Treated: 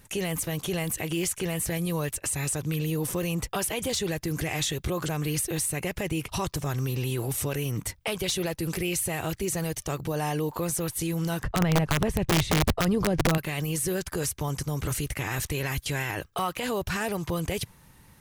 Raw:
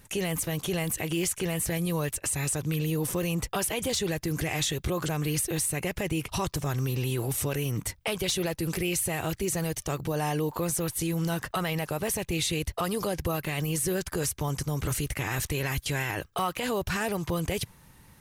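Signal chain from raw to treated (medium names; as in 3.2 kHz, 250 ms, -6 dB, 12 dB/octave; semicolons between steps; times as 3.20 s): 11.43–13.38 s: RIAA curve playback; integer overflow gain 16 dB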